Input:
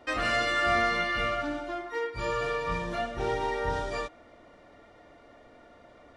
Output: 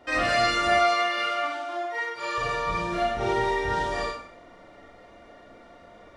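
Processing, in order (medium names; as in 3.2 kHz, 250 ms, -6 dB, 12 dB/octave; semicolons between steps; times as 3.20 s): 0.69–2.38 s: high-pass 540 Hz 12 dB/octave; Schroeder reverb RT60 0.55 s, combs from 33 ms, DRR -3 dB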